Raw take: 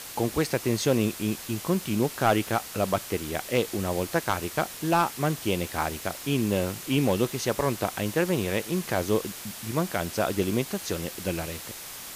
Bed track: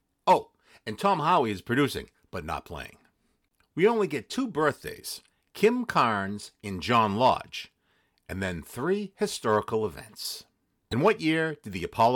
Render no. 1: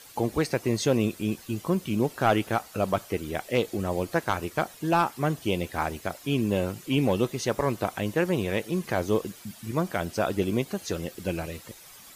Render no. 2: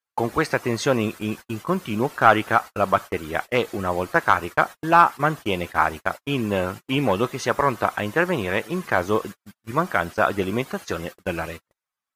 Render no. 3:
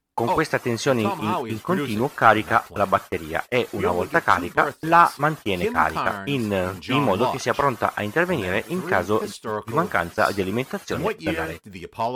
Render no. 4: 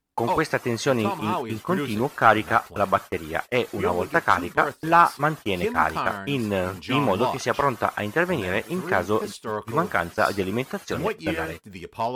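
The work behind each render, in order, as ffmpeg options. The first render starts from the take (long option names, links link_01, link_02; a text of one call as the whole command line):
ffmpeg -i in.wav -af "afftdn=noise_reduction=12:noise_floor=-40" out.wav
ffmpeg -i in.wav -af "agate=range=-45dB:threshold=-35dB:ratio=16:detection=peak,equalizer=frequency=1300:width_type=o:width=1.7:gain=12.5" out.wav
ffmpeg -i in.wav -i bed.wav -filter_complex "[1:a]volume=-3.5dB[link_01];[0:a][link_01]amix=inputs=2:normalize=0" out.wav
ffmpeg -i in.wav -af "volume=-1.5dB" out.wav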